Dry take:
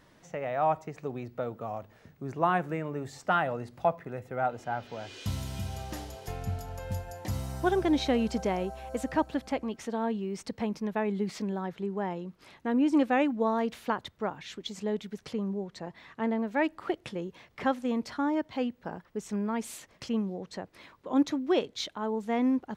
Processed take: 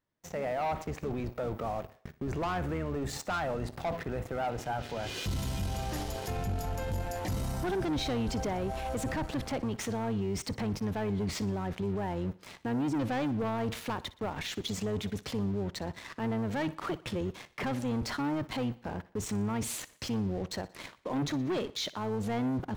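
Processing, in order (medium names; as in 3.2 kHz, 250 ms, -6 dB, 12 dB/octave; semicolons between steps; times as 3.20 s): octave divider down 1 oct, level -4 dB; gate with hold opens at -45 dBFS; waveshaping leveller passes 3; peak limiter -27 dBFS, peak gain reduction 14 dB; on a send: thinning echo 60 ms, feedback 49%, high-pass 170 Hz, level -18.5 dB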